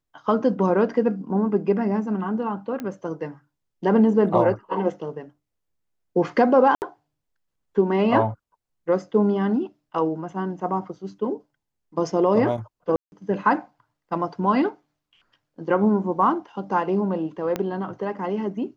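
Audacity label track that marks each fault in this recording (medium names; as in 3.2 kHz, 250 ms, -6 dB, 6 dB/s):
2.800000	2.800000	pop -18 dBFS
6.750000	6.820000	dropout 69 ms
12.960000	13.120000	dropout 161 ms
17.560000	17.560000	pop -12 dBFS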